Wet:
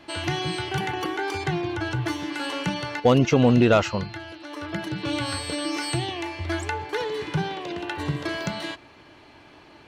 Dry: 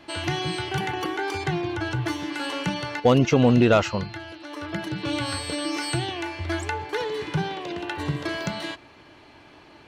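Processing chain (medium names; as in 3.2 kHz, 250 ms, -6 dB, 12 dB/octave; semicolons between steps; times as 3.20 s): 5.93–6.47 s: band-stop 1.5 kHz, Q 8.6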